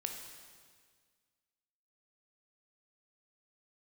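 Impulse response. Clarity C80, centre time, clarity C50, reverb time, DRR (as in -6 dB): 6.5 dB, 47 ms, 5.0 dB, 1.7 s, 3.0 dB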